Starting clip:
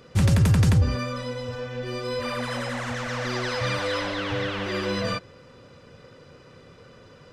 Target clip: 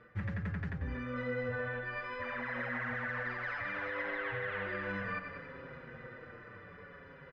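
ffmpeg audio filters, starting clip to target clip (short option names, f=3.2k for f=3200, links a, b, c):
-filter_complex "[0:a]areverse,acompressor=threshold=-32dB:ratio=4,areverse,lowpass=f=1.8k:t=q:w=4,dynaudnorm=f=310:g=11:m=5dB,asplit=2[a][b];[b]aecho=0:1:93|186|279|372|465:0.282|0.135|0.0649|0.0312|0.015[c];[a][c]amix=inputs=2:normalize=0,alimiter=limit=-24dB:level=0:latency=1:release=196,asplit=2[d][e];[e]adelay=6.2,afreqshift=-0.63[f];[d][f]amix=inputs=2:normalize=1,volume=-2dB"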